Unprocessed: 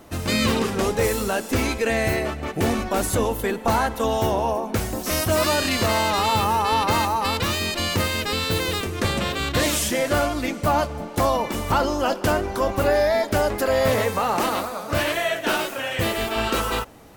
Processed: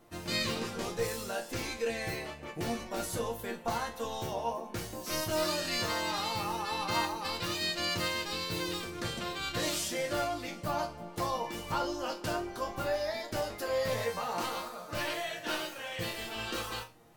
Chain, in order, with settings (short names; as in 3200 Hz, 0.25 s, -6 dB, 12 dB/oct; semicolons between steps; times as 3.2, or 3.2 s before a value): dynamic EQ 4800 Hz, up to +6 dB, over -42 dBFS, Q 1.2; resonator bank A#2 sus4, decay 0.26 s